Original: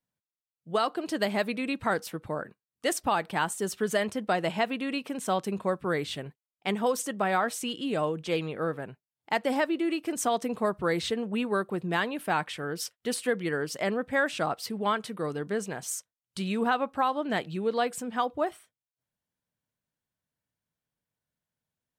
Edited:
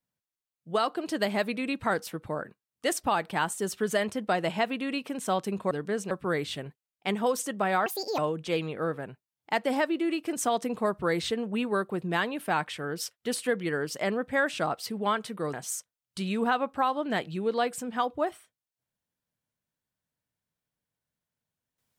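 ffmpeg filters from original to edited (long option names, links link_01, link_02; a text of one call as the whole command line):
ffmpeg -i in.wav -filter_complex "[0:a]asplit=6[link_01][link_02][link_03][link_04][link_05][link_06];[link_01]atrim=end=5.712[link_07];[link_02]atrim=start=15.328:end=15.732[link_08];[link_03]atrim=start=5.708:end=7.464[link_09];[link_04]atrim=start=7.46:end=7.98,asetpts=PTS-STARTPTS,asetrate=71001,aresample=44100,atrim=end_sample=14243,asetpts=PTS-STARTPTS[link_10];[link_05]atrim=start=7.976:end=15.332[link_11];[link_06]atrim=start=15.728[link_12];[link_07][link_08]acrossfade=duration=0.004:curve1=hsin:curve2=hsin[link_13];[link_13][link_09]acrossfade=duration=0.004:curve1=hsin:curve2=hsin[link_14];[link_14][link_10]acrossfade=duration=0.004:curve1=hsin:curve2=hsin[link_15];[link_15][link_11]acrossfade=duration=0.004:curve1=hsin:curve2=hsin[link_16];[link_16][link_12]acrossfade=duration=0.004:curve1=hsin:curve2=hsin" out.wav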